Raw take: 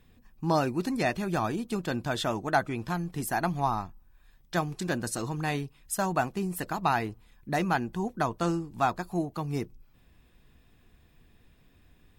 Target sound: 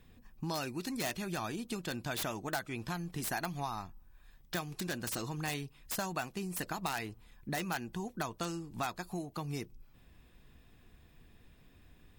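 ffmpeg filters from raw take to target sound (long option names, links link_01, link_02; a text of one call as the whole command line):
ffmpeg -i in.wav -filter_complex "[0:a]acrossover=split=2000[link_01][link_02];[link_01]acompressor=threshold=-36dB:ratio=6[link_03];[link_02]aeval=exprs='(mod(33.5*val(0)+1,2)-1)/33.5':channel_layout=same[link_04];[link_03][link_04]amix=inputs=2:normalize=0" out.wav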